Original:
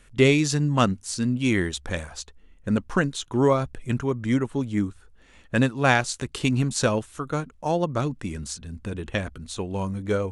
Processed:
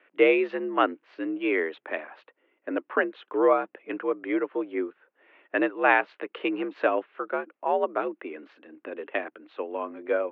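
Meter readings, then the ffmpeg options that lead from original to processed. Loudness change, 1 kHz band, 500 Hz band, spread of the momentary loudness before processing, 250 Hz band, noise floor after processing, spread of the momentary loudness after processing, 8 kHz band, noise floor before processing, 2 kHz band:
-2.5 dB, +0.5 dB, +0.5 dB, 13 LU, -6.0 dB, -76 dBFS, 15 LU, under -40 dB, -54 dBFS, 0.0 dB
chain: -af "highpass=f=270:t=q:w=0.5412,highpass=f=270:t=q:w=1.307,lowpass=f=2600:t=q:w=0.5176,lowpass=f=2600:t=q:w=0.7071,lowpass=f=2600:t=q:w=1.932,afreqshift=65"

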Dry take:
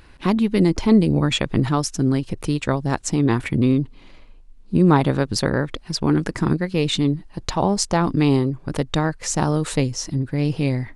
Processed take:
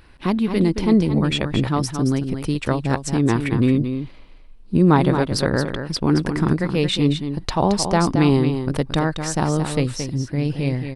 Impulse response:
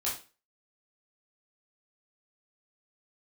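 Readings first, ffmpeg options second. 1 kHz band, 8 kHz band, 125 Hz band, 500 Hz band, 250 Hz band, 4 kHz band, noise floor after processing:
+1.0 dB, -2.5 dB, +0.5 dB, +1.0 dB, +0.5 dB, 0.0 dB, -42 dBFS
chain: -filter_complex "[0:a]equalizer=f=6800:t=o:w=0.29:g=-7.5,dynaudnorm=f=550:g=9:m=3.76,asplit=2[s0][s1];[s1]aecho=0:1:223:0.398[s2];[s0][s2]amix=inputs=2:normalize=0,volume=0.841"

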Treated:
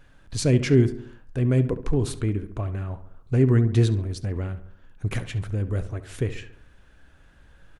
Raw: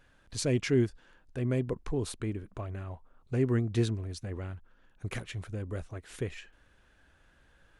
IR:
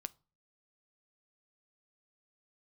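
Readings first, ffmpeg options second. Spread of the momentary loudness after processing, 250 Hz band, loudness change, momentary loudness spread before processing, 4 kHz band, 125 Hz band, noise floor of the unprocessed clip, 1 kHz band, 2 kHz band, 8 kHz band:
16 LU, +8.0 dB, +8.5 dB, 15 LU, +5.0 dB, +10.5 dB, -64 dBFS, +5.5 dB, +5.0 dB, +5.0 dB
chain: -filter_complex "[0:a]asplit=2[s0][s1];[s1]adelay=69,lowpass=f=2300:p=1,volume=0.251,asplit=2[s2][s3];[s3]adelay=69,lowpass=f=2300:p=1,volume=0.52,asplit=2[s4][s5];[s5]adelay=69,lowpass=f=2300:p=1,volume=0.52,asplit=2[s6][s7];[s7]adelay=69,lowpass=f=2300:p=1,volume=0.52,asplit=2[s8][s9];[s9]adelay=69,lowpass=f=2300:p=1,volume=0.52[s10];[s0][s2][s4][s6][s8][s10]amix=inputs=6:normalize=0,asplit=2[s11][s12];[1:a]atrim=start_sample=2205,lowshelf=f=240:g=8.5[s13];[s12][s13]afir=irnorm=-1:irlink=0,volume=4.22[s14];[s11][s14]amix=inputs=2:normalize=0,volume=0.447"

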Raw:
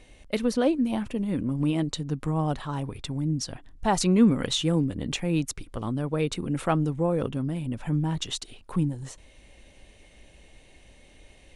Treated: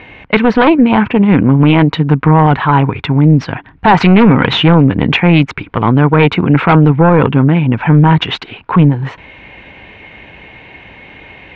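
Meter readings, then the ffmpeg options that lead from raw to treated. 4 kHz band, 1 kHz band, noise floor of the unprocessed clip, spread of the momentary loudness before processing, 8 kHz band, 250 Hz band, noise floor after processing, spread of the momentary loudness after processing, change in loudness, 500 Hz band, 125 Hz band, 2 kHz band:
+14.0 dB, +21.0 dB, -54 dBFS, 10 LU, no reading, +16.5 dB, -38 dBFS, 7 LU, +17.5 dB, +15.5 dB, +19.0 dB, +23.0 dB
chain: -af "aeval=exprs='0.335*(cos(1*acos(clip(val(0)/0.335,-1,1)))-cos(1*PI/2))+0.0841*(cos(4*acos(clip(val(0)/0.335,-1,1)))-cos(4*PI/2))+0.0188*(cos(6*acos(clip(val(0)/0.335,-1,1)))-cos(6*PI/2))':c=same,highpass=110,equalizer=f=240:t=q:w=4:g=-4,equalizer=f=350:t=q:w=4:g=-3,equalizer=f=570:t=q:w=4:g=-7,equalizer=f=940:t=q:w=4:g=6,equalizer=f=1500:t=q:w=4:g=5,equalizer=f=2300:t=q:w=4:g=5,lowpass=f=2800:w=0.5412,lowpass=f=2800:w=1.3066,apsyclip=14.1,volume=0.841"

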